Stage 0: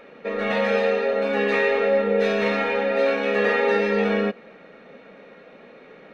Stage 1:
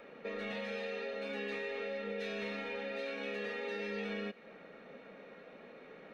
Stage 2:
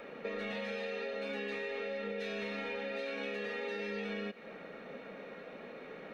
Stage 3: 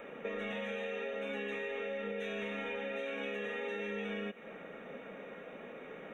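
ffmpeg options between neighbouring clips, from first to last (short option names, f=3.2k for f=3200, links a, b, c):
-filter_complex "[0:a]acrossover=split=1800|3600[a][b][c];[a]acompressor=threshold=-31dB:ratio=4[d];[b]acompressor=threshold=-35dB:ratio=4[e];[c]acompressor=threshold=-50dB:ratio=4[f];[d][e][f]amix=inputs=3:normalize=0,acrossover=split=500|2500[g][h][i];[h]alimiter=level_in=9dB:limit=-24dB:level=0:latency=1:release=39,volume=-9dB[j];[g][j][i]amix=inputs=3:normalize=0,volume=-7dB"
-af "acompressor=threshold=-41dB:ratio=6,volume=5.5dB"
-af "asuperstop=centerf=4700:order=8:qfactor=2.1"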